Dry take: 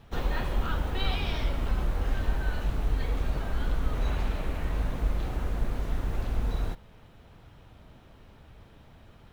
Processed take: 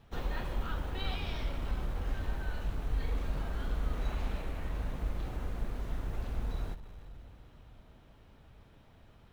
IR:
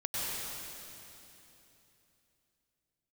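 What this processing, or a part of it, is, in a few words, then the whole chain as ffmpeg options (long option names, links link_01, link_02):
saturated reverb return: -filter_complex "[0:a]asettb=1/sr,asplit=3[link_01][link_02][link_03];[link_01]atrim=end=2.874[link_04];[link_02]atrim=start=2.87:end=4.42,asetpts=PTS-STARTPTS,afade=type=in:duration=0.004:curve=qsin,afade=type=out:start_time=1.546:duration=0.004:curve=qsin,asplit=2[link_05][link_06];[link_06]adelay=42,volume=-5dB[link_07];[link_05][link_07]amix=inputs=2:normalize=0,atrim=end_sample=68355[link_08];[link_03]atrim=start=4.416[link_09];[link_04][link_08]acrossfade=duration=0.004:curve1=hsin:curve2=qsin[link_10];[link_10][link_09]acrossfade=duration=0.004:curve1=qsin:curve2=hsin,asplit=2[link_11][link_12];[1:a]atrim=start_sample=2205[link_13];[link_12][link_13]afir=irnorm=-1:irlink=0,asoftclip=type=tanh:threshold=-19.5dB,volume=-14.5dB[link_14];[link_11][link_14]amix=inputs=2:normalize=0,volume=-7.5dB"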